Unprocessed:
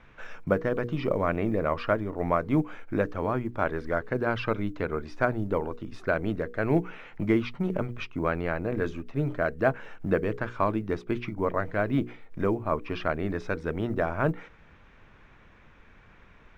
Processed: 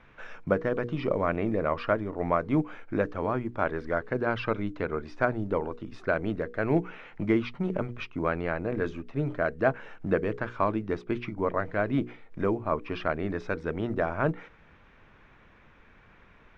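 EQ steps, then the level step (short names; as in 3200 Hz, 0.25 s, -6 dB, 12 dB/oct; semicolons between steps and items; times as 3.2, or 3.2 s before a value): air absorption 60 m; low shelf 130 Hz -4 dB; 0.0 dB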